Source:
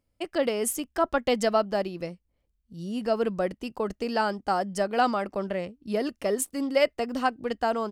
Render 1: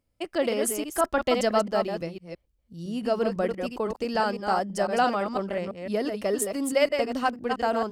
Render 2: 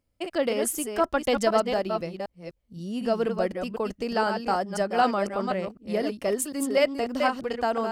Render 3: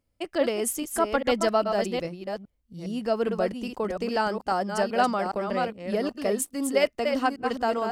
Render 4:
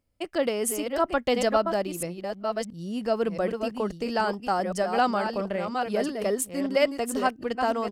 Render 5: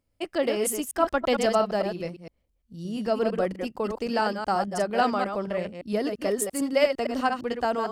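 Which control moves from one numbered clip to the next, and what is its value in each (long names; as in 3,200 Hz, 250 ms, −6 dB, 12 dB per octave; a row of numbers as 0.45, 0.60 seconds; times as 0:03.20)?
delay that plays each chunk backwards, delay time: 168, 251, 409, 676, 114 milliseconds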